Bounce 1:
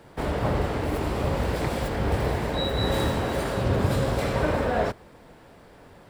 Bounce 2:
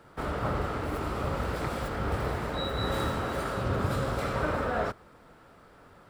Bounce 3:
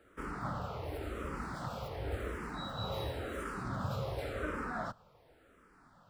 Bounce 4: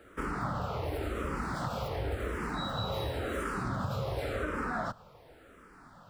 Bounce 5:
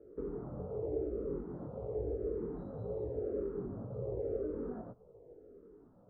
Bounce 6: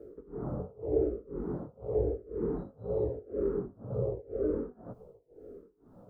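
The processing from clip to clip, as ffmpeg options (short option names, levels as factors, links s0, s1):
-af "equalizer=f=1300:w=4.2:g=11.5,volume=0.501"
-filter_complex "[0:a]asplit=2[s0][s1];[s1]afreqshift=-0.92[s2];[s0][s2]amix=inputs=2:normalize=1,volume=0.531"
-af "acompressor=threshold=0.0126:ratio=6,volume=2.51"
-af "alimiter=level_in=1.33:limit=0.0631:level=0:latency=1:release=420,volume=0.75,flanger=delay=16:depth=7.1:speed=1,lowpass=f=430:t=q:w=4.9,volume=0.668"
-af "tremolo=f=2:d=0.96,volume=2.82"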